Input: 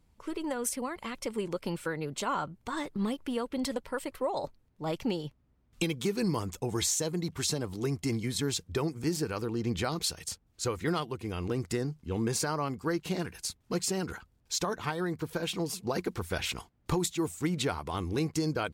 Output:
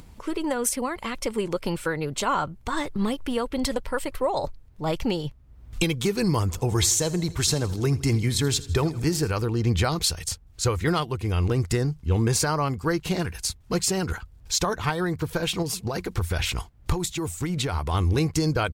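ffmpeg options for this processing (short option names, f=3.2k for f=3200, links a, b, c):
-filter_complex "[0:a]asplit=3[a][b][c];[a]afade=t=out:st=6.5:d=0.02[d];[b]aecho=1:1:81|162|243|324|405:0.126|0.0705|0.0395|0.0221|0.0124,afade=t=in:st=6.5:d=0.02,afade=t=out:st=9.3:d=0.02[e];[c]afade=t=in:st=9.3:d=0.02[f];[d][e][f]amix=inputs=3:normalize=0,asettb=1/sr,asplit=3[g][h][i];[g]atrim=end=15.624[j];[h]atrim=start=15.62:end=17.91,asetpts=PTS-STARTPTS,afade=t=in:d=0.004:c=qsin,afade=t=out:st=2.286:d=0.004:c=qsin,acompressor=threshold=-30dB:ratio=6:attack=3.2:release=140:knee=1:detection=peak[k];[i]atrim=start=17.906[l];[j][k]acrossfade=d=0.004:c1=hsin:c2=qsin[m];[m][l]acrossfade=d=0.004:c1=qsin:c2=hsin,acompressor=mode=upward:threshold=-44dB:ratio=2.5,asubboost=boost=4.5:cutoff=98,volume=7.5dB"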